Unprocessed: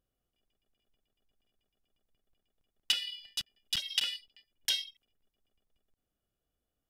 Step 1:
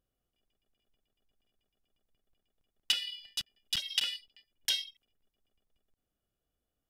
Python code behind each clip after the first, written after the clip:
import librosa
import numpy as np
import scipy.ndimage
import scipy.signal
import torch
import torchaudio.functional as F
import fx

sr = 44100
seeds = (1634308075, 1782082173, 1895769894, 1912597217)

y = x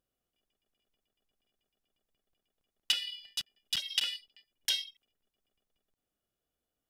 y = fx.low_shelf(x, sr, hz=140.0, db=-8.5)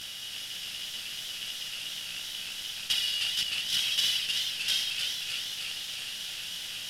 y = fx.bin_compress(x, sr, power=0.2)
y = fx.chorus_voices(y, sr, voices=2, hz=0.7, base_ms=13, depth_ms=5.0, mix_pct=55)
y = fx.echo_warbled(y, sr, ms=310, feedback_pct=67, rate_hz=2.8, cents=102, wet_db=-5.0)